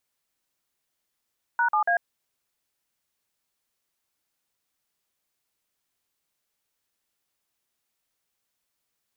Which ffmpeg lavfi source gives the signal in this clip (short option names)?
-f lavfi -i "aevalsrc='0.0794*clip(min(mod(t,0.142),0.096-mod(t,0.142))/0.002,0,1)*(eq(floor(t/0.142),0)*(sin(2*PI*941*mod(t,0.142))+sin(2*PI*1477*mod(t,0.142)))+eq(floor(t/0.142),1)*(sin(2*PI*852*mod(t,0.142))+sin(2*PI*1209*mod(t,0.142)))+eq(floor(t/0.142),2)*(sin(2*PI*697*mod(t,0.142))+sin(2*PI*1633*mod(t,0.142))))':d=0.426:s=44100"